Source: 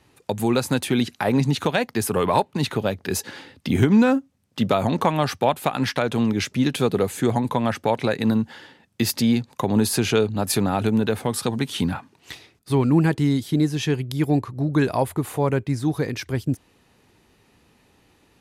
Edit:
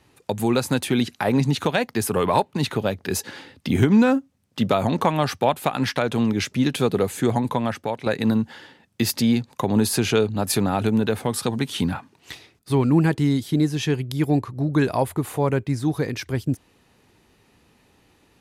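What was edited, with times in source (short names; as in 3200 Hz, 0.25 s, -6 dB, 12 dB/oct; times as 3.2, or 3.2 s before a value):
7.48–8.06 fade out, to -9 dB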